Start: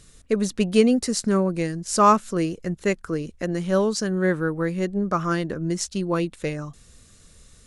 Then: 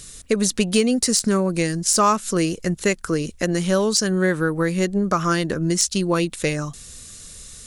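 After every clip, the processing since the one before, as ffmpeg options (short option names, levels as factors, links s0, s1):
-af "deesser=0.45,highshelf=f=3000:g=11.5,acompressor=threshold=0.0794:ratio=3,volume=1.88"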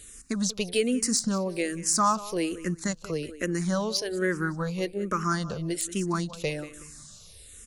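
-filter_complex "[0:a]aecho=1:1:186|372|558:0.158|0.0555|0.0194,asplit=2[s0][s1];[s1]afreqshift=-1.2[s2];[s0][s2]amix=inputs=2:normalize=1,volume=0.562"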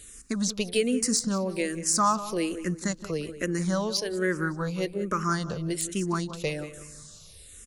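-filter_complex "[0:a]asplit=2[s0][s1];[s1]adelay=168,lowpass=f=890:p=1,volume=0.211,asplit=2[s2][s3];[s3]adelay=168,lowpass=f=890:p=1,volume=0.38,asplit=2[s4][s5];[s5]adelay=168,lowpass=f=890:p=1,volume=0.38,asplit=2[s6][s7];[s7]adelay=168,lowpass=f=890:p=1,volume=0.38[s8];[s0][s2][s4][s6][s8]amix=inputs=5:normalize=0"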